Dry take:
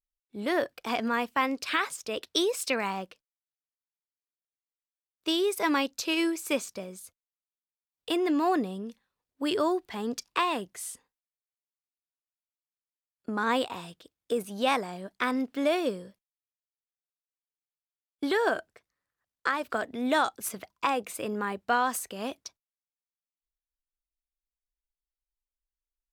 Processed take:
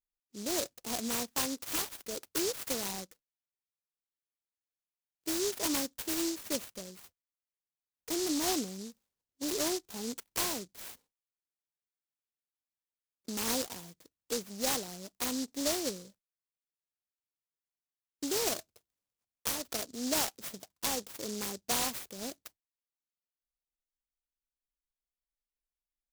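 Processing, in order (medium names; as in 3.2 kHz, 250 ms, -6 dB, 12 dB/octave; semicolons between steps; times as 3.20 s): delay time shaken by noise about 5.5 kHz, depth 0.23 ms; trim -6 dB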